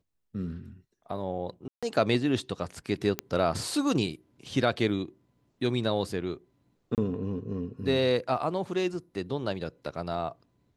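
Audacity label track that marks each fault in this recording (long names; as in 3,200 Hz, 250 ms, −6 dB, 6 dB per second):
1.680000	1.830000	drop-out 146 ms
3.190000	3.190000	click −12 dBFS
6.950000	6.980000	drop-out 28 ms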